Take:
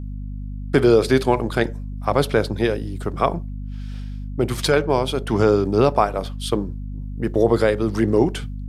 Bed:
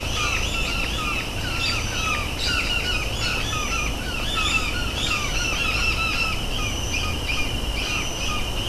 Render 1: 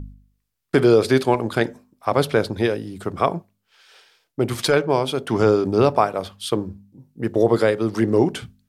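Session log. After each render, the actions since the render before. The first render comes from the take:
hum removal 50 Hz, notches 5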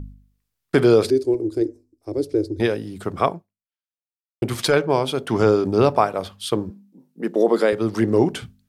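0:01.10–0:02.60: drawn EQ curve 100 Hz 0 dB, 190 Hz −27 dB, 320 Hz +8 dB, 700 Hz −20 dB, 1,200 Hz −29 dB, 2,200 Hz −22 dB, 3,200 Hz −26 dB, 4,900 Hz −8 dB, 9,000 Hz −10 dB, 14,000 Hz −16 dB
0:03.27–0:04.42: fade out exponential
0:06.70–0:07.73: elliptic high-pass filter 170 Hz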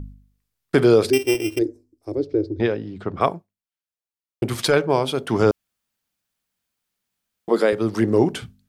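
0:01.13–0:01.59: samples sorted by size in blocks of 16 samples
0:02.15–0:03.21: high-frequency loss of the air 190 metres
0:05.51–0:07.48: fill with room tone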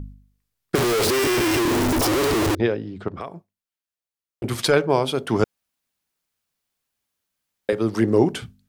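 0:00.75–0:02.55: sign of each sample alone
0:03.08–0:04.44: downward compressor 4 to 1, threshold −30 dBFS
0:05.44–0:07.69: fill with room tone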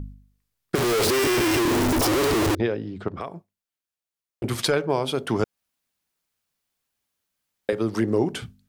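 downward compressor 2 to 1, threshold −21 dBFS, peak gain reduction 5.5 dB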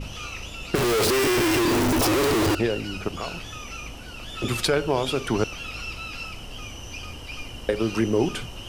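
mix in bed −12 dB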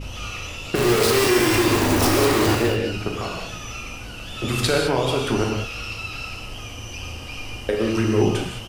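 double-tracking delay 39 ms −12.5 dB
reverb whose tail is shaped and stops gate 230 ms flat, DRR 0 dB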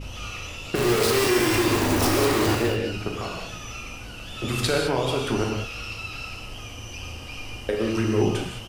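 level −3 dB

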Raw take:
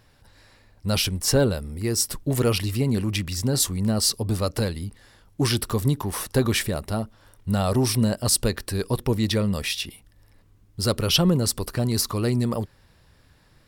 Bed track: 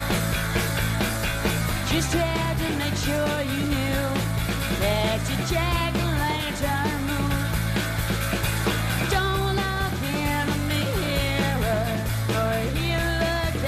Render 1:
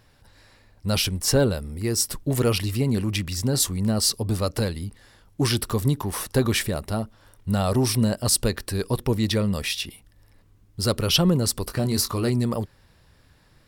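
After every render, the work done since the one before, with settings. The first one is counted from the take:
0:11.64–0:12.30: double-tracking delay 22 ms −8 dB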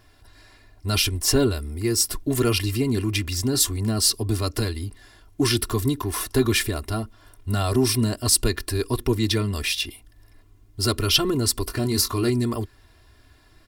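comb filter 2.9 ms, depth 88%
dynamic equaliser 660 Hz, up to −7 dB, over −40 dBFS, Q 2.1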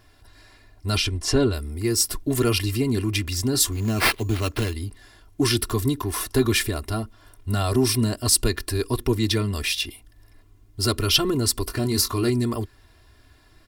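0:00.97–0:01.53: high-frequency loss of the air 66 metres
0:03.72–0:04.74: sample-rate reduction 6,900 Hz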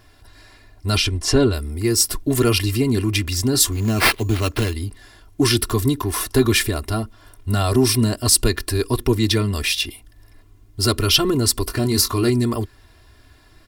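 level +4 dB
brickwall limiter −2 dBFS, peak gain reduction 2 dB

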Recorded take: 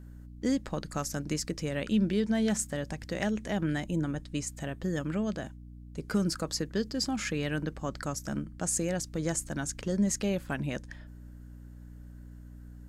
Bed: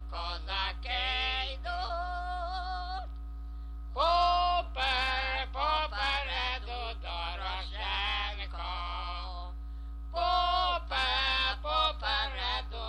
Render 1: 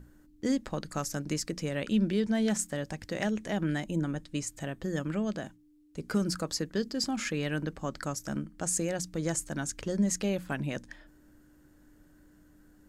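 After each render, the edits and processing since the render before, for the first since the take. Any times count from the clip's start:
mains-hum notches 60/120/180/240 Hz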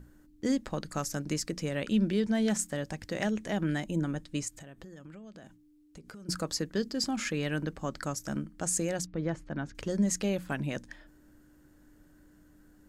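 0:04.48–0:06.29: downward compressor 12 to 1, threshold −44 dBFS
0:09.06–0:09.75: high-frequency loss of the air 330 metres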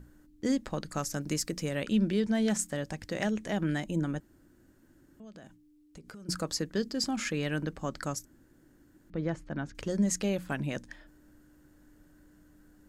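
0:01.21–0:01.84: high-shelf EQ 11,000 Hz +10.5 dB
0:04.20–0:05.20: fill with room tone
0:08.25–0:09.10: fill with room tone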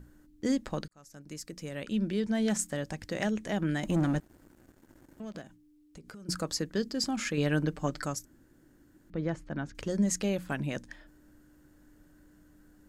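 0:00.88–0:02.57: fade in
0:03.83–0:05.42: leveller curve on the samples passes 2
0:07.37–0:08.06: comb filter 6.7 ms, depth 76%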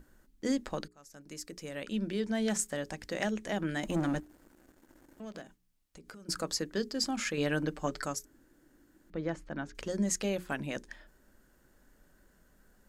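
parametric band 110 Hz −9 dB 1.5 octaves
mains-hum notches 60/120/180/240/300/360/420 Hz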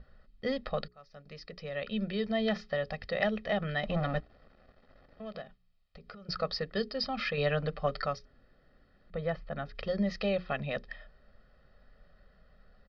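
Butterworth low-pass 4,900 Hz 72 dB per octave
comb filter 1.6 ms, depth 99%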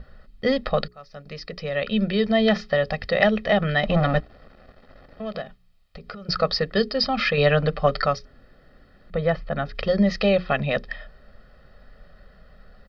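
level +11 dB

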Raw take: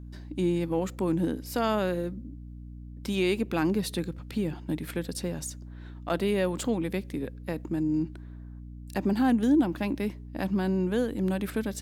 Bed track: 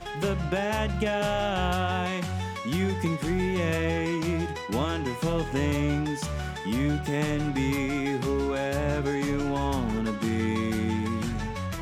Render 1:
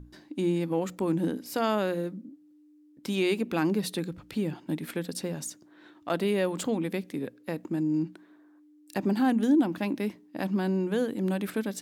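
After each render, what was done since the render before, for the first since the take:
mains-hum notches 60/120/180/240 Hz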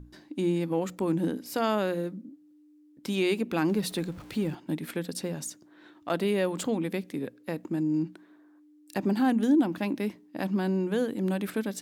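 0:03.68–0:04.55: converter with a step at zero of −45.5 dBFS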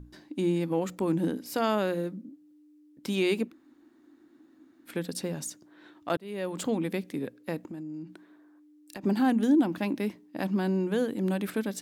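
0:03.48–0:04.90: fill with room tone, crossfade 0.10 s
0:06.17–0:06.69: fade in
0:07.60–0:09.04: downward compressor 5 to 1, threshold −37 dBFS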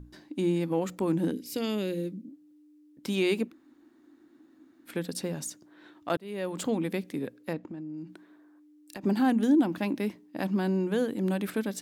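0:01.31–0:02.28: flat-topped bell 1,000 Hz −14.5 dB
0:07.53–0:07.98: high-frequency loss of the air 130 metres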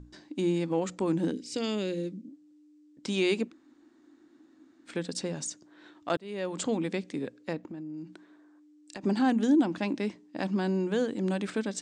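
Butterworth low-pass 8,300 Hz 48 dB per octave
bass and treble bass −2 dB, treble +4 dB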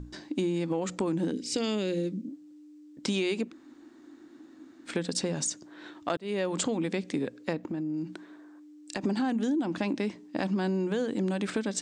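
in parallel at +2.5 dB: brickwall limiter −23 dBFS, peak gain reduction 7.5 dB
on the sum: downward compressor 6 to 1, threshold −26 dBFS, peak gain reduction 10.5 dB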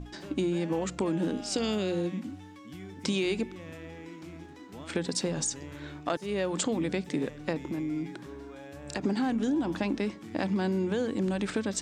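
mix in bed track −18 dB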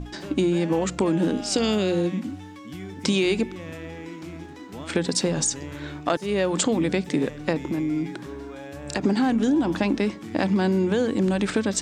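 level +7 dB

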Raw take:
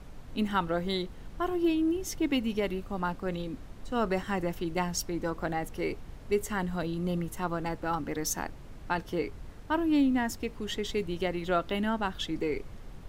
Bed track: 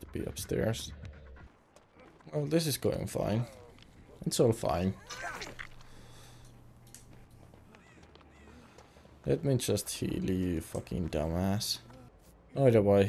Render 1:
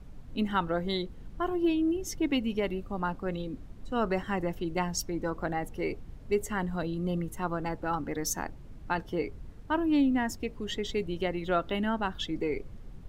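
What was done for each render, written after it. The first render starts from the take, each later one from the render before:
broadband denoise 8 dB, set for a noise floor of −46 dBFS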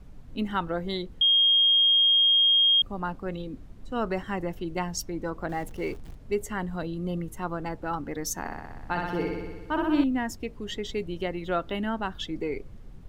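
0:01.21–0:02.82: beep over 3,240 Hz −17 dBFS
0:05.49–0:06.15: converter with a step at zero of −44 dBFS
0:08.39–0:10.04: flutter between parallel walls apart 10.6 metres, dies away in 1.3 s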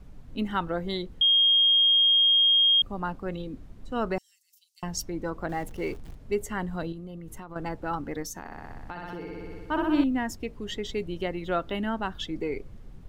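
0:04.18–0:04.83: inverse Chebyshev high-pass filter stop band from 880 Hz, stop band 80 dB
0:06.92–0:07.56: downward compressor 16 to 1, threshold −36 dBFS
0:08.22–0:09.59: downward compressor, threshold −34 dBFS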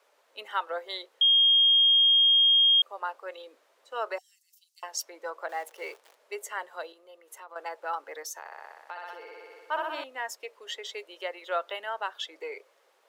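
Butterworth high-pass 500 Hz 36 dB per octave
notch filter 740 Hz, Q 12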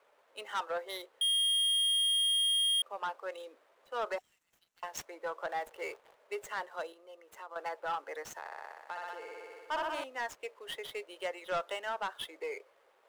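running median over 9 samples
soft clipping −27.5 dBFS, distortion −13 dB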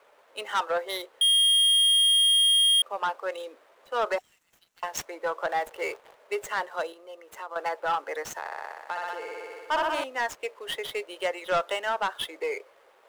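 level +8.5 dB

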